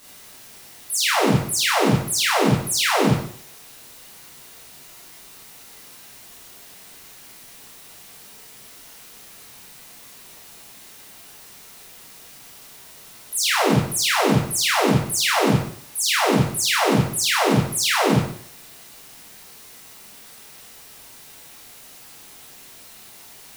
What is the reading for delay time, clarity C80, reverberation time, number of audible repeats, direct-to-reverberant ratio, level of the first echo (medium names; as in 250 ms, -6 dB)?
no echo, 6.0 dB, 0.55 s, no echo, -6.5 dB, no echo